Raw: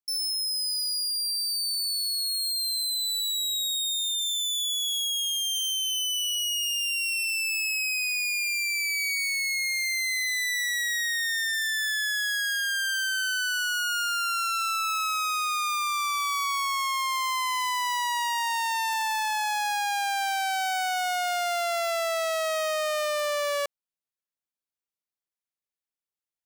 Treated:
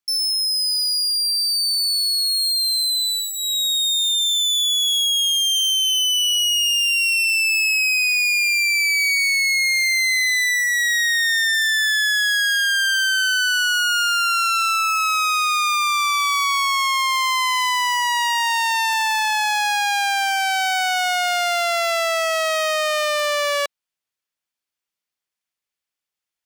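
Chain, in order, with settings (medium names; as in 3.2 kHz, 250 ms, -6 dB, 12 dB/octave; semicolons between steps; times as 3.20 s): peaking EQ 2.8 kHz +6.5 dB 2.9 oct; band-stop 3.9 kHz, Q 27; trim +3.5 dB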